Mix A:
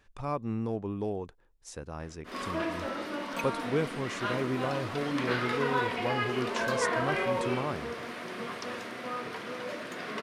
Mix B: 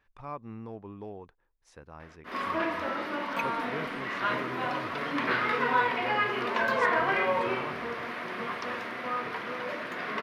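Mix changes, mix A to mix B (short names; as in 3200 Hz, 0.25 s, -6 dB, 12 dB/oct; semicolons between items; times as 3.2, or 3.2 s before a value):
speech -9.5 dB; master: add graphic EQ 1000/2000/8000 Hz +5/+5/-10 dB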